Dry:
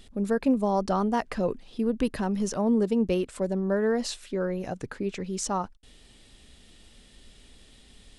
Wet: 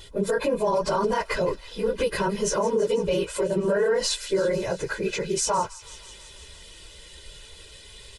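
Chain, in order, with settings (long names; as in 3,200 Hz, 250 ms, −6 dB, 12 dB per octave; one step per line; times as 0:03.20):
random phases in long frames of 50 ms
low-shelf EQ 330 Hz −8 dB
comb filter 2 ms, depth 85%
brickwall limiter −24 dBFS, peak gain reduction 11 dB
delay with a high-pass on its return 165 ms, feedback 73%, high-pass 2,100 Hz, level −15 dB
level +8.5 dB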